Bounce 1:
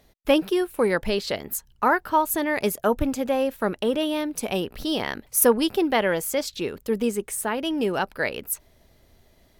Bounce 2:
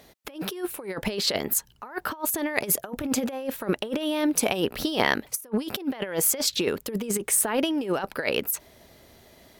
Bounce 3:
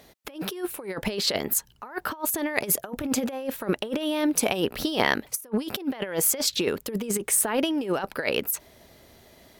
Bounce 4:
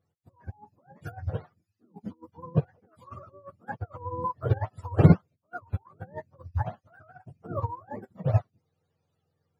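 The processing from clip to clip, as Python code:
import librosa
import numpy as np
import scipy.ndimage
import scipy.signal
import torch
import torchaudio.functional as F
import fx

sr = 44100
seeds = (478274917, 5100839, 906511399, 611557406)

y1 = fx.highpass(x, sr, hz=180.0, slope=6)
y1 = fx.over_compress(y1, sr, threshold_db=-29.0, ratio=-0.5)
y1 = y1 * 10.0 ** (3.0 / 20.0)
y2 = y1
y3 = fx.octave_mirror(y2, sr, pivot_hz=550.0)
y3 = fx.upward_expand(y3, sr, threshold_db=-36.0, expansion=2.5)
y3 = y3 * 10.0 ** (6.5 / 20.0)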